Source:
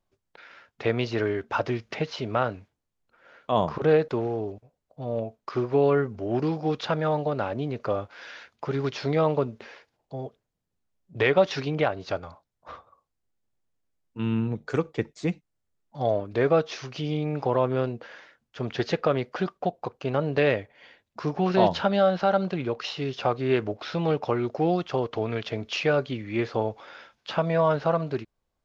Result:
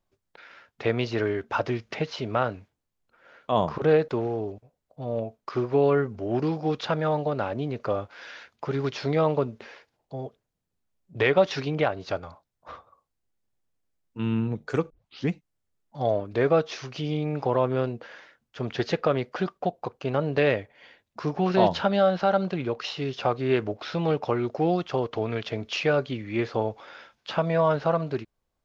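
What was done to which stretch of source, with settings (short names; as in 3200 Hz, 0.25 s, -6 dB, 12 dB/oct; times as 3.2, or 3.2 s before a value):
14.9 tape start 0.40 s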